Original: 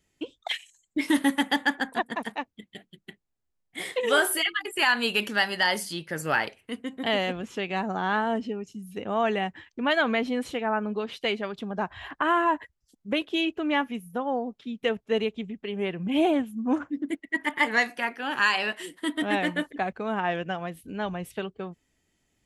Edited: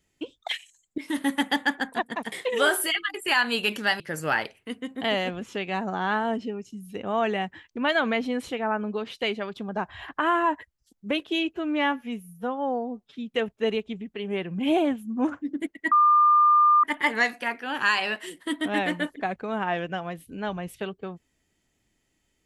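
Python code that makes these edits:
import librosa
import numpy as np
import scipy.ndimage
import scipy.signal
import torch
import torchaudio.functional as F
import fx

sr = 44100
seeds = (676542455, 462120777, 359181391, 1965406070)

y = fx.edit(x, sr, fx.fade_in_from(start_s=0.98, length_s=0.42, floor_db=-13.5),
    fx.cut(start_s=2.32, length_s=1.51),
    fx.cut(start_s=5.51, length_s=0.51),
    fx.stretch_span(start_s=13.56, length_s=1.07, factor=1.5),
    fx.insert_tone(at_s=17.4, length_s=0.92, hz=1200.0, db=-14.5), tone=tone)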